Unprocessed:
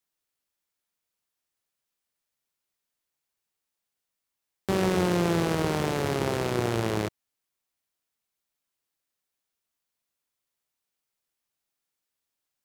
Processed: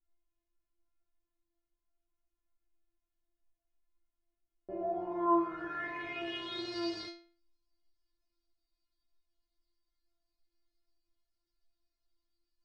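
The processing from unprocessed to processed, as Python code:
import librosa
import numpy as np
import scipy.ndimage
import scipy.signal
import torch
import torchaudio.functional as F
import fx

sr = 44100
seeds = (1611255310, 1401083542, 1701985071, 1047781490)

y = fx.filter_sweep_lowpass(x, sr, from_hz=100.0, to_hz=4600.0, start_s=3.05, end_s=6.72, q=7.9)
y = fx.dmg_noise_colour(y, sr, seeds[0], colour='brown', level_db=-69.0)
y = fx.stiff_resonator(y, sr, f0_hz=340.0, decay_s=0.47, stiffness=0.002)
y = y * 10.0 ** (3.0 / 20.0)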